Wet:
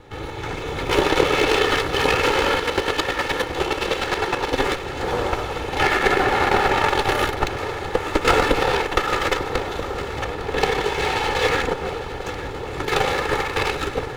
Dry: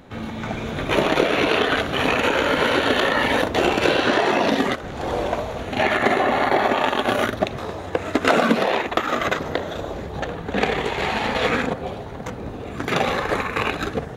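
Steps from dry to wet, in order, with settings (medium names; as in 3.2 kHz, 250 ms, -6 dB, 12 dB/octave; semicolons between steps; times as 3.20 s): comb filter that takes the minimum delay 2.3 ms; 2.57–4.58 s: square tremolo 9.7 Hz, depth 65%, duty 25%; echo whose repeats swap between lows and highs 427 ms, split 1.2 kHz, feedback 86%, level -13 dB; trim +2 dB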